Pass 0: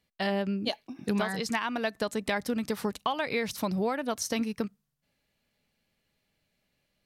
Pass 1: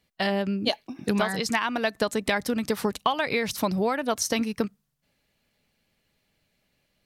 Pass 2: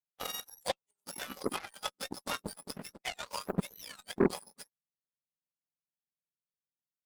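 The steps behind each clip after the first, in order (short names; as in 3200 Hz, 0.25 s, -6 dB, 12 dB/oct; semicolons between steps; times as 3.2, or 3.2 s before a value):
harmonic-percussive split percussive +3 dB; gain +3 dB
spectrum mirrored in octaves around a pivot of 1500 Hz; added harmonics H 7 -17 dB, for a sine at -10 dBFS; gain -3.5 dB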